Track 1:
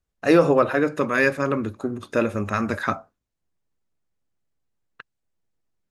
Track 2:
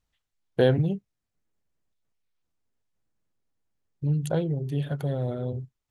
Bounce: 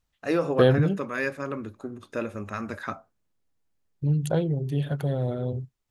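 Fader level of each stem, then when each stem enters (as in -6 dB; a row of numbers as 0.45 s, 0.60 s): -9.0 dB, +1.5 dB; 0.00 s, 0.00 s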